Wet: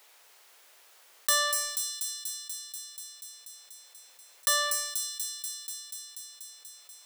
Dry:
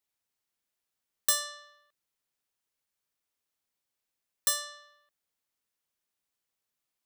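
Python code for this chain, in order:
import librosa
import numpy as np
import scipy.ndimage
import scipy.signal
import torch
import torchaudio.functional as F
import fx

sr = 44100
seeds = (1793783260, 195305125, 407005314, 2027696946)

p1 = scipy.signal.sosfilt(scipy.signal.butter(4, 430.0, 'highpass', fs=sr, output='sos'), x)
p2 = fx.high_shelf(p1, sr, hz=4500.0, db=-6.5)
p3 = fx.leveller(p2, sr, passes=2)
p4 = p3 + fx.echo_wet_highpass(p3, sr, ms=242, feedback_pct=60, hz=5200.0, wet_db=-7.5, dry=0)
y = fx.env_flatten(p4, sr, amount_pct=50)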